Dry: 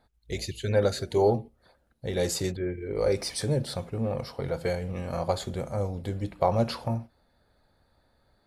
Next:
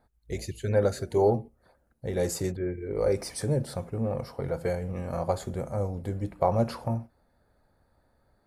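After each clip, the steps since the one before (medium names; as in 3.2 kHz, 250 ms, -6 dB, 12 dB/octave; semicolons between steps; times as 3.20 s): peaking EQ 3.6 kHz -10.5 dB 1.2 oct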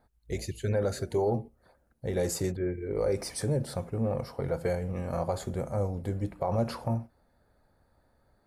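peak limiter -19.5 dBFS, peak gain reduction 8 dB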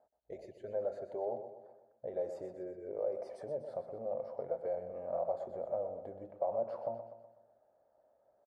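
compression 2.5:1, threshold -34 dBFS, peak gain reduction 7.5 dB; band-pass filter 620 Hz, Q 5.4; on a send: feedback delay 124 ms, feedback 50%, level -10 dB; on the sum: trim +6.5 dB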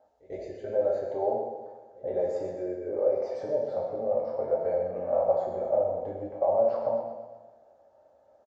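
pre-echo 94 ms -19.5 dB; two-slope reverb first 0.85 s, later 2.7 s, from -25 dB, DRR -2.5 dB; resampled via 16 kHz; trim +6 dB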